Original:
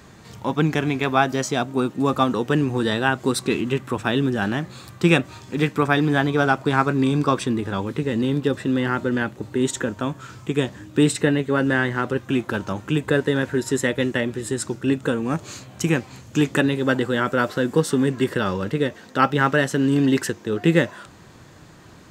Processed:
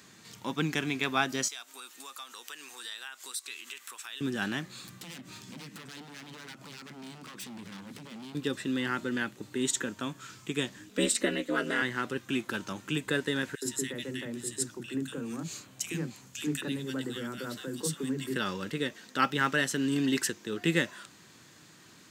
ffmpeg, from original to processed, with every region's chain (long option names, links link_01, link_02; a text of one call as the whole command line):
ffmpeg -i in.wav -filter_complex "[0:a]asettb=1/sr,asplit=3[link_01][link_02][link_03];[link_01]atrim=end=1.484[link_04];[link_02]atrim=start=1.48:end=4.21,asetpts=PTS-STARTPTS,afade=type=in:duration=0.004:curve=qsin,afade=type=out:start_time=2.726:duration=0.004:curve=qsin,highpass=1000,highshelf=frequency=5300:gain=10.5,acompressor=threshold=-37dB:ratio=3:attack=3.2:release=140:knee=1:detection=peak[link_05];[link_03]atrim=start=4.206[link_06];[link_04][link_05]acrossfade=duration=0.004:curve1=hsin:curve2=qsin[link_07];[link_07][link_06]acrossfade=duration=0.004:curve1=qsin:curve2=hsin,asettb=1/sr,asplit=3[link_08][link_09][link_10];[link_08]atrim=end=4.844[link_11];[link_09]atrim=start=4.84:end=8.35,asetpts=PTS-STARTPTS,afade=type=in:duration=0.004:curve=qsin,afade=type=out:start_time=3.506:duration=0.004:curve=qsin,acompressor=threshold=-30dB:ratio=6:attack=3.2:release=140:knee=1:detection=peak,aeval=exprs='0.0211*(abs(mod(val(0)/0.0211+3,4)-2)-1)':channel_layout=same,equalizer=frequency=190:width_type=o:width=1.2:gain=9.5[link_12];[link_10]atrim=start=8.346[link_13];[link_11][link_12]acrossfade=duration=0.004:curve1=hsin:curve2=qsin[link_14];[link_14][link_13]acrossfade=duration=0.004:curve1=qsin:curve2=hsin,asettb=1/sr,asplit=3[link_15][link_16][link_17];[link_15]atrim=end=10.894[link_18];[link_16]atrim=start=10.89:end=11.82,asetpts=PTS-STARTPTS,afade=type=in:duration=0.004:curve=qsin,afade=type=out:start_time=0.926:duration=0.004:curve=qsin,equalizer=frequency=350:width_type=o:width=0.34:gain=6,aecho=1:1:2.1:0.99,atrim=end_sample=41013,aeval=exprs='val(0)*sin(2*PI*110*n/s)':channel_layout=same[link_19];[link_17]atrim=start=11.816[link_20];[link_18][link_19]acrossfade=duration=0.004:curve1=hsin:curve2=qsin[link_21];[link_21][link_20]acrossfade=duration=0.004:curve1=qsin:curve2=hsin,asettb=1/sr,asplit=3[link_22][link_23][link_24];[link_22]atrim=end=13.554[link_25];[link_23]atrim=start=13.55:end=18.36,asetpts=PTS-STARTPTS,afade=type=in:duration=0.004:curve=qsin,afade=type=out:start_time=4.806:duration=0.004:curve=qsin,equalizer=frequency=4300:width=0.59:gain=-3.5,acrossover=split=420|3000[link_26][link_27][link_28];[link_27]acompressor=threshold=-36dB:ratio=2:attack=3.2:release=140:knee=2.83:detection=peak[link_29];[link_26][link_29][link_28]amix=inputs=3:normalize=0,acrossover=split=270|1700[link_30][link_31][link_32];[link_31]adelay=70[link_33];[link_30]adelay=100[link_34];[link_34][link_33][link_32]amix=inputs=3:normalize=0,atrim=end_sample=212121[link_35];[link_24]atrim=start=18.356[link_36];[link_25][link_35]acrossfade=duration=0.004:curve1=hsin:curve2=qsin[link_37];[link_37][link_36]acrossfade=duration=0.004:curve1=qsin:curve2=hsin,highpass=250,equalizer=frequency=630:width=0.49:gain=-13.5" out.wav